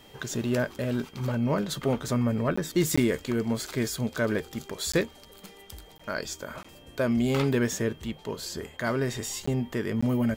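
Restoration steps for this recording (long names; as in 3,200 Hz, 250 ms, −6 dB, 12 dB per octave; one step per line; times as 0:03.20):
notch filter 3,200 Hz, Q 30
repair the gap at 0:02.56/0:02.96/0:04.92/0:05.98/0:06.63/0:09.46/0:10.01, 15 ms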